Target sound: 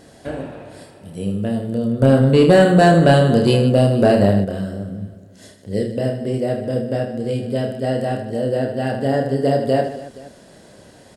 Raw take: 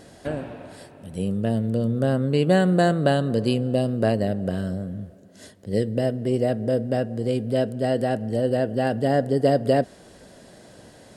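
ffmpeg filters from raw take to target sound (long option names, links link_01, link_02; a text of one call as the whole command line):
ffmpeg -i in.wav -filter_complex "[0:a]aecho=1:1:30|78|154.8|277.7|474.3:0.631|0.398|0.251|0.158|0.1,asettb=1/sr,asplit=3[link_01][link_02][link_03];[link_01]atrim=end=2.024[link_04];[link_02]atrim=start=2.02:end=4.45,asetpts=PTS-STARTPTS,afade=type=in:duration=0.004:curve=qsin,afade=type=out:start_time=2.426:duration=0.004:curve=qsin,acontrast=84[link_05];[link_03]atrim=start=4.446[link_06];[link_04][link_05]acrossfade=duration=0.004:curve1=hsin:curve2=qsin[link_07];[link_07][link_06]acrossfade=duration=0.004:curve1=qsin:curve2=hsin" out.wav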